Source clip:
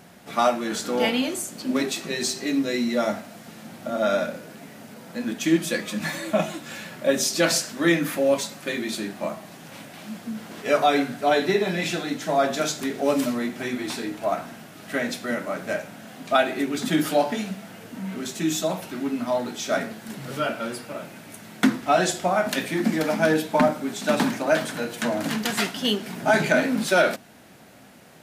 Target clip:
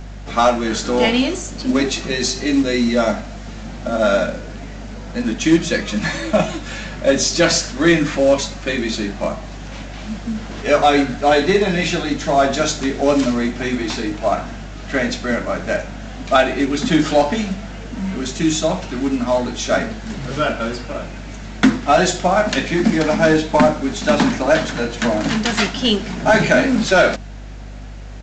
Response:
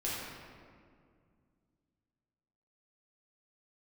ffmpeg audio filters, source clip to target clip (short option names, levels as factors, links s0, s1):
-af "acontrast=80,aeval=exprs='val(0)+0.0141*(sin(2*PI*50*n/s)+sin(2*PI*2*50*n/s)/2+sin(2*PI*3*50*n/s)/3+sin(2*PI*4*50*n/s)/4+sin(2*PI*5*50*n/s)/5)':c=same,aresample=16000,acrusher=bits=6:mode=log:mix=0:aa=0.000001,aresample=44100,lowshelf=f=72:g=9"